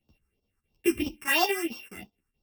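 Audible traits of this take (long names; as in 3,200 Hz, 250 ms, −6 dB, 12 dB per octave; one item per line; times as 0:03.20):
a buzz of ramps at a fixed pitch in blocks of 16 samples
phaser sweep stages 4, 3 Hz, lowest notch 600–1,900 Hz
chopped level 4.7 Hz, depth 65%, duty 80%
a shimmering, thickened sound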